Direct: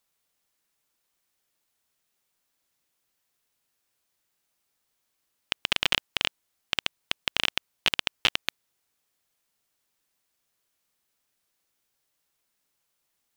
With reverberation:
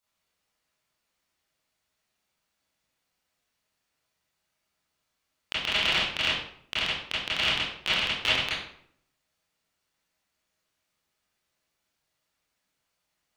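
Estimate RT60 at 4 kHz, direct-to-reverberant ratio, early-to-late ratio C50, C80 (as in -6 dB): 0.45 s, -10.5 dB, 1.0 dB, 5.5 dB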